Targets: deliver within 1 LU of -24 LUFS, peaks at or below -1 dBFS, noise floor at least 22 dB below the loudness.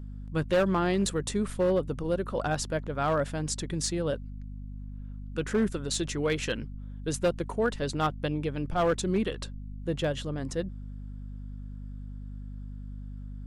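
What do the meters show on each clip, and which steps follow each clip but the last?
clipped samples 0.9%; clipping level -19.5 dBFS; hum 50 Hz; highest harmonic 250 Hz; hum level -37 dBFS; loudness -30.0 LUFS; peak level -19.5 dBFS; loudness target -24.0 LUFS
-> clip repair -19.5 dBFS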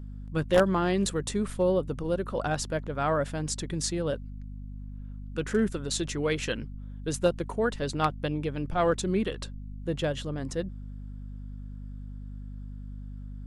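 clipped samples 0.0%; hum 50 Hz; highest harmonic 250 Hz; hum level -37 dBFS
-> de-hum 50 Hz, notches 5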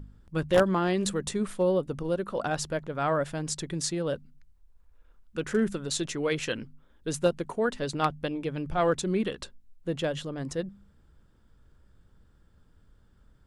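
hum not found; loudness -29.5 LUFS; peak level -10.5 dBFS; loudness target -24.0 LUFS
-> trim +5.5 dB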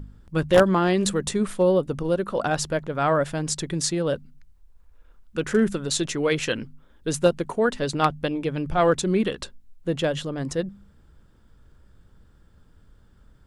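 loudness -24.0 LUFS; peak level -5.0 dBFS; noise floor -56 dBFS

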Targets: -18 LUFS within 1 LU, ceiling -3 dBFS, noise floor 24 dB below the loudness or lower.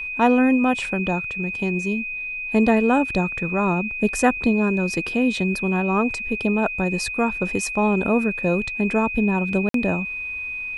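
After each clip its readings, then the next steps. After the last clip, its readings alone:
dropouts 1; longest dropout 53 ms; steady tone 2.5 kHz; tone level -27 dBFS; loudness -21.5 LUFS; peak level -3.5 dBFS; loudness target -18.0 LUFS
-> interpolate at 9.69 s, 53 ms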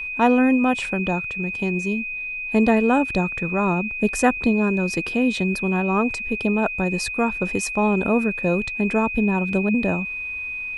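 dropouts 0; steady tone 2.5 kHz; tone level -27 dBFS
-> band-stop 2.5 kHz, Q 30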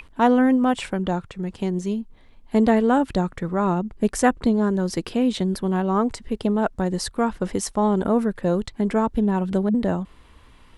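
steady tone not found; loudness -22.5 LUFS; peak level -3.5 dBFS; loudness target -18.0 LUFS
-> trim +4.5 dB; peak limiter -3 dBFS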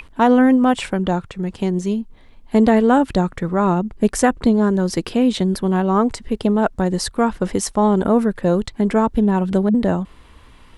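loudness -18.0 LUFS; peak level -3.0 dBFS; noise floor -46 dBFS

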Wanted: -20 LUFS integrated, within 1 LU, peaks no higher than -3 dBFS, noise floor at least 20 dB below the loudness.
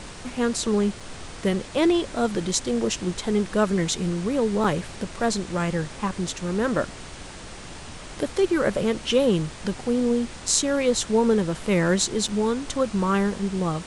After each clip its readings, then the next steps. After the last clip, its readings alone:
dropouts 3; longest dropout 4.9 ms; noise floor -40 dBFS; noise floor target -44 dBFS; loudness -24.0 LUFS; peak level -2.0 dBFS; loudness target -20.0 LUFS
-> interpolate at 1.00/4.64/12.28 s, 4.9 ms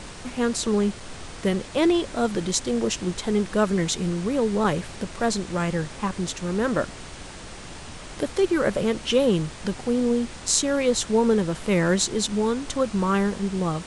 dropouts 0; noise floor -40 dBFS; noise floor target -44 dBFS
-> noise print and reduce 6 dB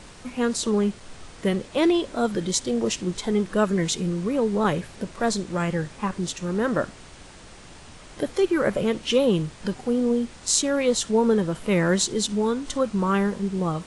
noise floor -45 dBFS; loudness -24.0 LUFS; peak level -2.5 dBFS; loudness target -20.0 LUFS
-> trim +4 dB; peak limiter -3 dBFS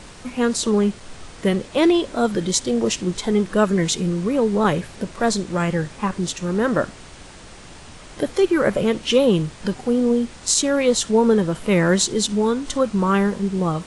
loudness -20.5 LUFS; peak level -3.0 dBFS; noise floor -41 dBFS

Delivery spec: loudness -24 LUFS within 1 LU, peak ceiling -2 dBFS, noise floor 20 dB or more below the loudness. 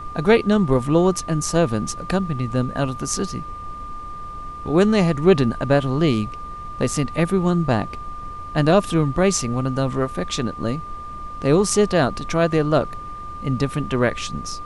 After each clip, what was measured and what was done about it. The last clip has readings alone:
steady tone 1.2 kHz; tone level -32 dBFS; noise floor -34 dBFS; noise floor target -41 dBFS; loudness -20.5 LUFS; peak level -2.5 dBFS; loudness target -24.0 LUFS
-> band-stop 1.2 kHz, Q 30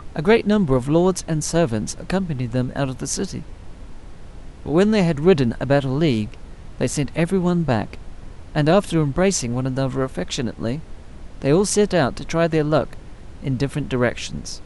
steady tone not found; noise floor -39 dBFS; noise floor target -41 dBFS
-> noise print and reduce 6 dB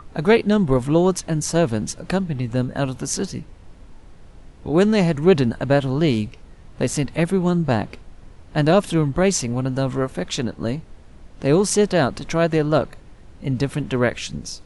noise floor -45 dBFS; loudness -20.5 LUFS; peak level -3.0 dBFS; loudness target -24.0 LUFS
-> trim -3.5 dB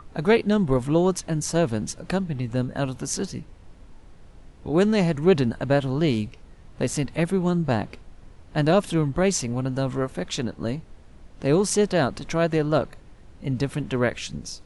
loudness -24.0 LUFS; peak level -6.5 dBFS; noise floor -48 dBFS

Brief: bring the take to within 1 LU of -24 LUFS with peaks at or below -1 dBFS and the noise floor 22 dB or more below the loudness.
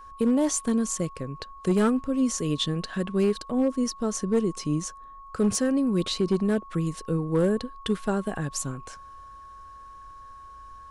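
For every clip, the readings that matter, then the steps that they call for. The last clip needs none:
clipped samples 0.5%; clipping level -16.0 dBFS; steady tone 1.1 kHz; tone level -43 dBFS; loudness -26.5 LUFS; peak level -16.0 dBFS; loudness target -24.0 LUFS
-> clip repair -16 dBFS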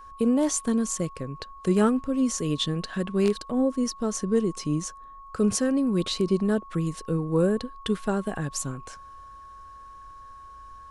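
clipped samples 0.0%; steady tone 1.1 kHz; tone level -43 dBFS
-> band-stop 1.1 kHz, Q 30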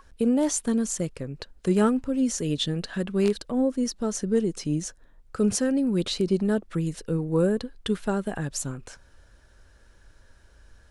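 steady tone not found; loudness -26.0 LUFS; peak level -9.5 dBFS; loudness target -24.0 LUFS
-> trim +2 dB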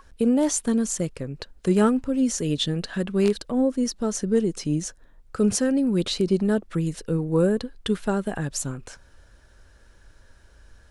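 loudness -24.0 LUFS; peak level -7.5 dBFS; noise floor -54 dBFS

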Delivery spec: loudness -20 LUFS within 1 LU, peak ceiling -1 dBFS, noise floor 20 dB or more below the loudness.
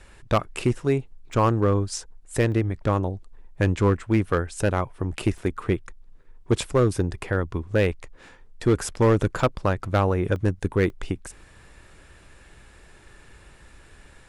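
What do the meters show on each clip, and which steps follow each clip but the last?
clipped samples 0.6%; clipping level -12.5 dBFS; dropouts 6; longest dropout 1.1 ms; loudness -24.5 LUFS; peak level -12.5 dBFS; loudness target -20.0 LUFS
-> clip repair -12.5 dBFS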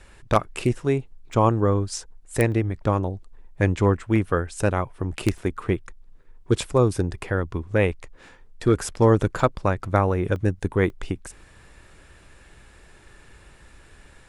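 clipped samples 0.0%; dropouts 6; longest dropout 1.1 ms
-> interpolate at 1.33/2.52/5.38/9.40/10.36/10.90 s, 1.1 ms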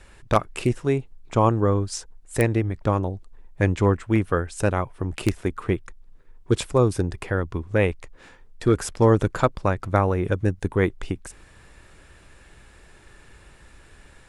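dropouts 0; loudness -24.0 LUFS; peak level -3.5 dBFS; loudness target -20.0 LUFS
-> trim +4 dB; peak limiter -1 dBFS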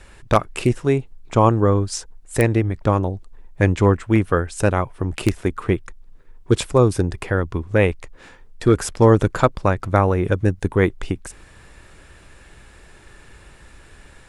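loudness -20.0 LUFS; peak level -1.0 dBFS; noise floor -47 dBFS

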